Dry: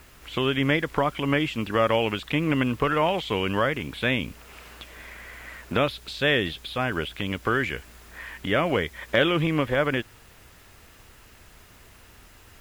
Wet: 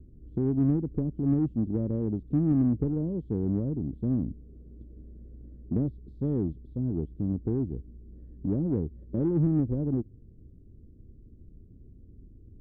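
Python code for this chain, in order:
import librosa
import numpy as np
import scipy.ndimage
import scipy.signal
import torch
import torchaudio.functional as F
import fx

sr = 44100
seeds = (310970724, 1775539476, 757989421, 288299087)

p1 = scipy.signal.sosfilt(scipy.signal.cheby2(4, 50, 860.0, 'lowpass', fs=sr, output='sos'), x)
p2 = 10.0 ** (-30.0 / 20.0) * np.tanh(p1 / 10.0 ** (-30.0 / 20.0))
y = p1 + (p2 * 10.0 ** (-5.0 / 20.0))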